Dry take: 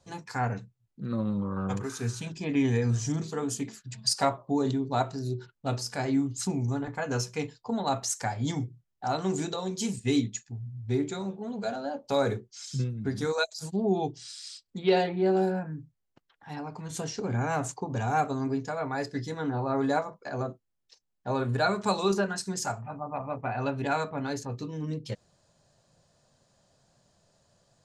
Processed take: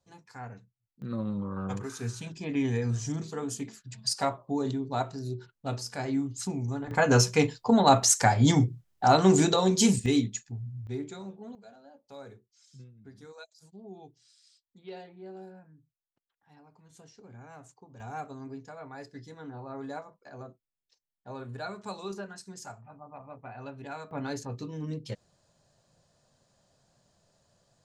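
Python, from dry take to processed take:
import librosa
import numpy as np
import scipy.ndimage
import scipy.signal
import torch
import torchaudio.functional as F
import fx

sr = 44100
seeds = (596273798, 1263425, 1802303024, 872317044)

y = fx.gain(x, sr, db=fx.steps((0.0, -13.0), (1.02, -3.0), (6.91, 9.0), (10.06, 0.5), (10.87, -7.5), (11.55, -20.0), (18.0, -12.0), (24.11, -2.0)))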